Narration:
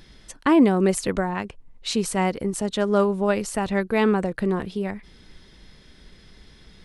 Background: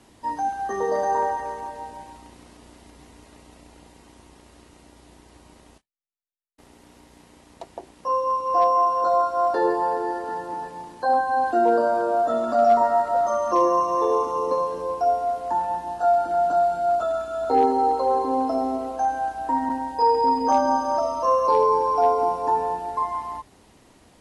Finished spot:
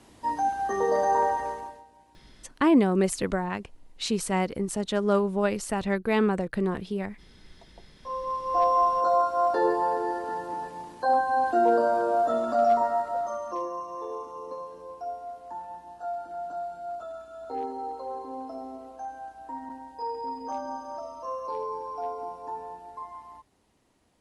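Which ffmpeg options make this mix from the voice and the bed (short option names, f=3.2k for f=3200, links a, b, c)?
-filter_complex "[0:a]adelay=2150,volume=-3.5dB[a];[1:a]volume=14.5dB,afade=t=out:st=1.46:d=0.38:silence=0.141254,afade=t=in:st=7.9:d=0.89:silence=0.177828,afade=t=out:st=12.28:d=1.41:silence=0.251189[b];[a][b]amix=inputs=2:normalize=0"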